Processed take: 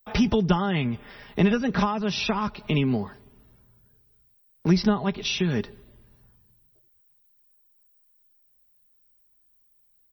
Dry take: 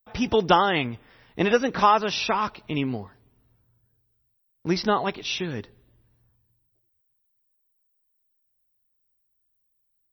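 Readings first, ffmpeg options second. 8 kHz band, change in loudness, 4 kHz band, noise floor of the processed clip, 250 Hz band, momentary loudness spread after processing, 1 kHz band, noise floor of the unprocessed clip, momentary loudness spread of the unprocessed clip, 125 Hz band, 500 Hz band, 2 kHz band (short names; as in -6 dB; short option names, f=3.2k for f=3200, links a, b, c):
0.0 dB, -1.0 dB, -1.5 dB, -64 dBFS, +5.0 dB, 9 LU, -8.0 dB, -73 dBFS, 15 LU, +7.5 dB, -3.5 dB, -3.0 dB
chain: -filter_complex "[0:a]aecho=1:1:4.9:0.45,acrossover=split=200[a][b];[b]acompressor=threshold=-33dB:ratio=10[c];[a][c]amix=inputs=2:normalize=0,volume=8.5dB"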